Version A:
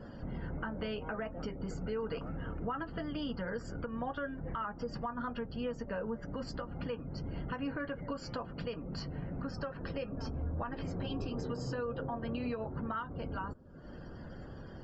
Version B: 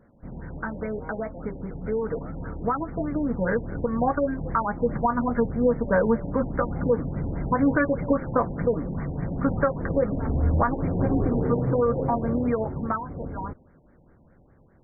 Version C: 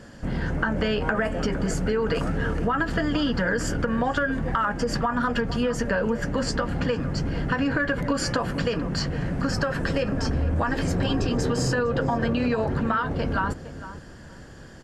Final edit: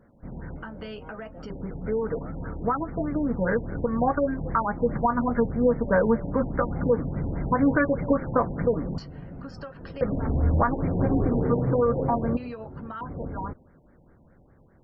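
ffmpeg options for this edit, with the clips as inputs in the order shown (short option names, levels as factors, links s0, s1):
-filter_complex "[0:a]asplit=3[s0][s1][s2];[1:a]asplit=4[s3][s4][s5][s6];[s3]atrim=end=0.562[s7];[s0]atrim=start=0.558:end=1.502[s8];[s4]atrim=start=1.498:end=8.982[s9];[s1]atrim=start=8.978:end=10.012[s10];[s5]atrim=start=10.008:end=12.372[s11];[s2]atrim=start=12.368:end=13.012[s12];[s6]atrim=start=13.008[s13];[s7][s8]acrossfade=d=0.004:c1=hsin:c2=hsin[s14];[s14][s9]acrossfade=d=0.004:c1=hsin:c2=hsin[s15];[s15][s10]acrossfade=d=0.004:c1=hsin:c2=hsin[s16];[s16][s11]acrossfade=d=0.004:c1=hsin:c2=hsin[s17];[s17][s12]acrossfade=d=0.004:c1=hsin:c2=hsin[s18];[s18][s13]acrossfade=d=0.004:c1=hsin:c2=hsin"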